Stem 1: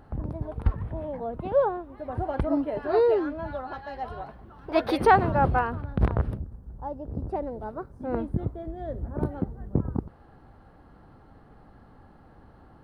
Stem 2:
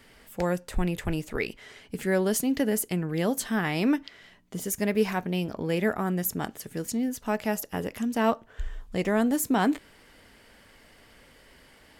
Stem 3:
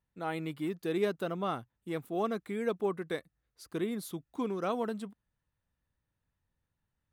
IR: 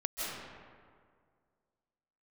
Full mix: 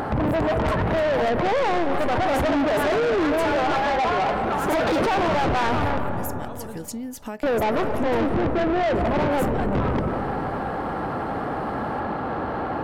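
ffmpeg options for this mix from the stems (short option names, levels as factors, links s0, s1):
-filter_complex "[0:a]asplit=2[s0][s1];[s1]highpass=f=720:p=1,volume=79.4,asoftclip=type=tanh:threshold=0.422[s2];[s0][s2]amix=inputs=2:normalize=0,lowpass=f=1000:p=1,volume=0.501,acompressor=threshold=0.0794:ratio=1.5,volume=1.12,asplit=3[s3][s4][s5];[s3]atrim=end=5.98,asetpts=PTS-STARTPTS,afade=t=out:st=5.976:d=0.004:c=hsin[s6];[s4]atrim=start=5.98:end=7.43,asetpts=PTS-STARTPTS,volume=0[s7];[s5]atrim=start=7.43,asetpts=PTS-STARTPTS,afade=t=in:d=0.004:c=hsin[s8];[s6][s7][s8]concat=n=3:v=0:a=1,asplit=2[s9][s10];[s10]volume=0.376[s11];[1:a]acompressor=threshold=0.0355:ratio=6,volume=1,asplit=2[s12][s13];[2:a]adelay=1800,volume=0.891[s14];[s13]apad=whole_len=393507[s15];[s14][s15]sidechaincompress=threshold=0.0141:ratio=8:attack=16:release=447[s16];[3:a]atrim=start_sample=2205[s17];[s11][s17]afir=irnorm=-1:irlink=0[s18];[s9][s12][s16][s18]amix=inputs=4:normalize=0,acompressor=mode=upward:threshold=0.0355:ratio=2.5,asoftclip=type=tanh:threshold=0.112"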